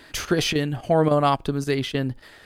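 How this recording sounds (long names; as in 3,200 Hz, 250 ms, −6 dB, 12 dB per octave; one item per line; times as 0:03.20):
chopped level 3.6 Hz, depth 60%, duty 90%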